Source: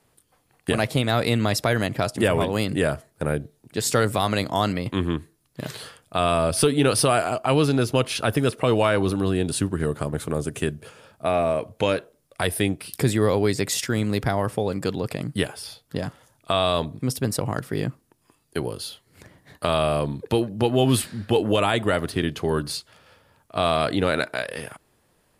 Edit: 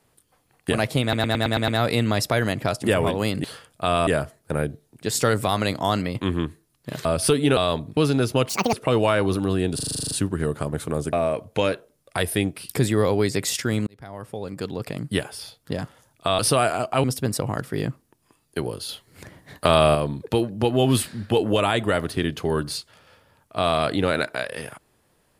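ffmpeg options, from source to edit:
-filter_complex "[0:a]asplit=29[s0][s1][s2][s3][s4][s5][s6][s7][s8][s9][s10][s11][s12][s13][s14][s15][s16][s17][s18][s19][s20][s21][s22][s23][s24][s25][s26][s27][s28];[s0]atrim=end=1.132[s29];[s1]atrim=start=1.018:end=1.132[s30];[s2]atrim=start=1.018:end=1.132[s31];[s3]atrim=start=1.018:end=1.132[s32];[s4]atrim=start=1.018:end=1.132[s33];[s5]atrim=start=1.018:end=1.132[s34];[s6]atrim=start=1.018:end=2.782[s35];[s7]atrim=start=5.758:end=6.392[s36];[s8]atrim=start=2.778:end=5.762[s37];[s9]atrim=start=6.388:end=6.912[s38];[s10]atrim=start=16.628:end=17.032[s39];[s11]atrim=start=7.558:end=8.084[s40];[s12]atrim=start=8.08:end=8.49,asetpts=PTS-STARTPTS,asetrate=75852,aresample=44100,atrim=end_sample=10512,asetpts=PTS-STARTPTS[s41];[s13]atrim=start=8.486:end=9.552[s42];[s14]atrim=start=9.508:end=9.552[s43];[s15]atrim=start=9.508:end=9.552[s44];[s16]atrim=start=9.508:end=9.552[s45];[s17]atrim=start=9.508:end=9.552[s46];[s18]atrim=start=9.508:end=9.552[s47];[s19]atrim=start=9.508:end=9.552[s48];[s20]atrim=start=9.508:end=9.552[s49];[s21]atrim=start=9.508:end=9.552[s50];[s22]atrim=start=9.508:end=10.532[s51];[s23]atrim=start=11.368:end=14.11,asetpts=PTS-STARTPTS,afade=t=out:st=2.738:d=0.004:c=hsin[s52];[s24]atrim=start=14.11:end=16.632,asetpts=PTS-STARTPTS,afade=t=in:d=1.28[s53];[s25]atrim=start=6.908:end=7.562[s54];[s26]atrim=start=17.028:end=18.882[s55];[s27]atrim=start=18.878:end=19.942,asetpts=PTS-STARTPTS,volume=1.78[s56];[s28]atrim=start=19.938[s57];[s29][s30]acrossfade=d=0.004:c1=hsin:c2=hsin[s58];[s58][s31]acrossfade=d=0.004:c1=hsin:c2=hsin[s59];[s59][s32]acrossfade=d=0.004:c1=hsin:c2=hsin[s60];[s60][s33]acrossfade=d=0.004:c1=hsin:c2=hsin[s61];[s61][s34]acrossfade=d=0.004:c1=hsin:c2=hsin[s62];[s62][s35]acrossfade=d=0.004:c1=hsin:c2=hsin[s63];[s63][s36]acrossfade=d=0.004:c1=hsin:c2=hsin[s64];[s64][s37]acrossfade=d=0.004:c1=hsin:c2=hsin[s65];[s65][s38]acrossfade=d=0.004:c1=hsin:c2=hsin[s66];[s66][s39]acrossfade=d=0.004:c1=hsin:c2=hsin[s67];[s67][s40]acrossfade=d=0.004:c1=hsin:c2=hsin[s68];[s68][s41]acrossfade=d=0.004:c1=hsin:c2=hsin[s69];[s69][s42]acrossfade=d=0.004:c1=hsin:c2=hsin[s70];[s70][s43]acrossfade=d=0.004:c1=hsin:c2=hsin[s71];[s71][s44]acrossfade=d=0.004:c1=hsin:c2=hsin[s72];[s72][s45]acrossfade=d=0.004:c1=hsin:c2=hsin[s73];[s73][s46]acrossfade=d=0.004:c1=hsin:c2=hsin[s74];[s74][s47]acrossfade=d=0.004:c1=hsin:c2=hsin[s75];[s75][s48]acrossfade=d=0.004:c1=hsin:c2=hsin[s76];[s76][s49]acrossfade=d=0.004:c1=hsin:c2=hsin[s77];[s77][s50]acrossfade=d=0.004:c1=hsin:c2=hsin[s78];[s78][s51]acrossfade=d=0.004:c1=hsin:c2=hsin[s79];[s52][s53]concat=n=2:v=0:a=1[s80];[s79][s80]acrossfade=d=0.004:c1=hsin:c2=hsin[s81];[s81][s54]acrossfade=d=0.004:c1=hsin:c2=hsin[s82];[s82][s55]acrossfade=d=0.004:c1=hsin:c2=hsin[s83];[s83][s56]acrossfade=d=0.004:c1=hsin:c2=hsin[s84];[s84][s57]acrossfade=d=0.004:c1=hsin:c2=hsin"

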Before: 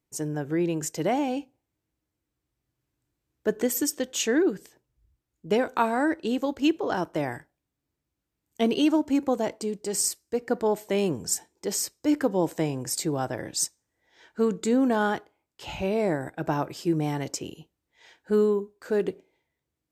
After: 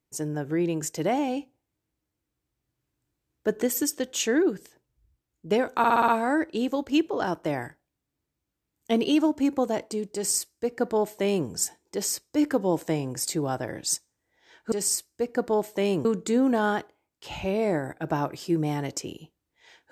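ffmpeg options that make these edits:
-filter_complex "[0:a]asplit=8[s0][s1][s2][s3][s4][s5][s6][s7];[s0]atrim=end=5.842[s8];[s1]atrim=start=5.778:end=5.842[s9];[s2]atrim=start=5.778:end=5.842[s10];[s3]atrim=start=5.778:end=5.842[s11];[s4]atrim=start=5.778:end=5.842[s12];[s5]atrim=start=5.778:end=14.422[s13];[s6]atrim=start=9.848:end=11.182[s14];[s7]atrim=start=14.418[s15];[s8][s9]acrossfade=d=0.004:c1=hsin:c2=hsin[s16];[s16][s10]acrossfade=d=0.004:c1=hsin:c2=hsin[s17];[s17][s11]acrossfade=d=0.004:c1=hsin:c2=hsin[s18];[s18][s12]acrossfade=d=0.004:c1=hsin:c2=hsin[s19];[s19][s13]acrossfade=d=0.004:c1=hsin:c2=hsin[s20];[s20][s14]acrossfade=d=0.004:c1=hsin:c2=hsin[s21];[s21][s15]acrossfade=d=0.004:c1=hsin:c2=hsin"

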